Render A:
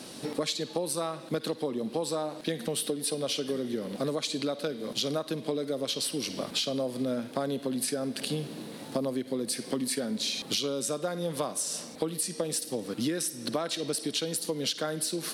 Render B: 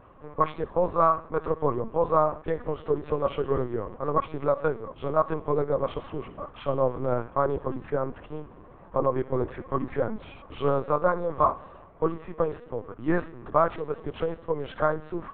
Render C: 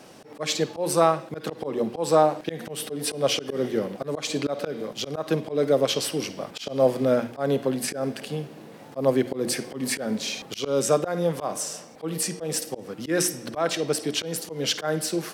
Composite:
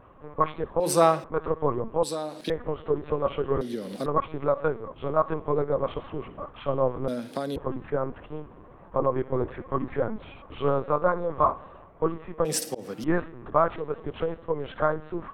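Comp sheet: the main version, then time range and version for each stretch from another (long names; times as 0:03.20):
B
0:00.80–0:01.24: punch in from C
0:02.03–0:02.50: punch in from A
0:03.61–0:04.06: punch in from A
0:07.08–0:07.56: punch in from A
0:12.45–0:13.04: punch in from C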